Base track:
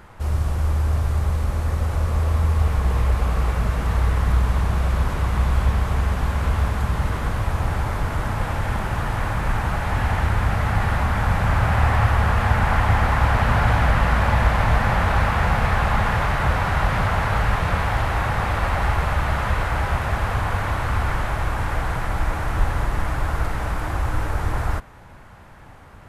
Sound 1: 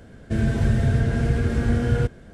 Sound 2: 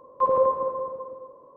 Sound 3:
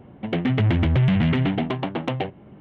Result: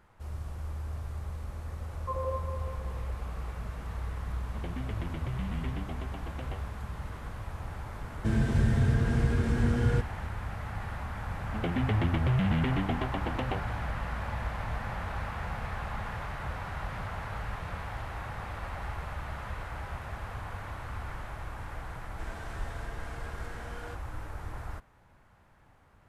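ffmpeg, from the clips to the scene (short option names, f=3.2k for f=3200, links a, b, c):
-filter_complex "[3:a]asplit=2[a][b];[1:a]asplit=2[c][d];[0:a]volume=-16.5dB[e];[c]equalizer=f=660:t=o:w=0.77:g=-4.5[f];[d]highpass=640[g];[2:a]atrim=end=1.56,asetpts=PTS-STARTPTS,volume=-14dB,afade=t=in:d=0.004:c=hsin,afade=t=out:st=1.556:d=0.004:c=hsin,adelay=1870[h];[a]atrim=end=2.6,asetpts=PTS-STARTPTS,volume=-18dB,afade=t=in:d=0.004:c=hsin,afade=t=out:st=2.596:d=0.004:c=hsin,adelay=4310[i];[f]atrim=end=2.33,asetpts=PTS-STARTPTS,volume=-5dB,afade=t=in:d=0.004:c=hsin,afade=t=out:st=2.326:d=0.004:c=hsin,adelay=350154S[j];[b]atrim=end=2.6,asetpts=PTS-STARTPTS,volume=-8.5dB,afade=t=in:d=0.004:c=hsin,afade=t=out:st=2.596:d=0.004:c=hsin,adelay=11310[k];[g]atrim=end=2.33,asetpts=PTS-STARTPTS,volume=-12.5dB,afade=t=in:d=0.004:c=hsin,afade=t=out:st=2.326:d=0.004:c=hsin,adelay=21880[l];[e][h][i][j][k][l]amix=inputs=6:normalize=0"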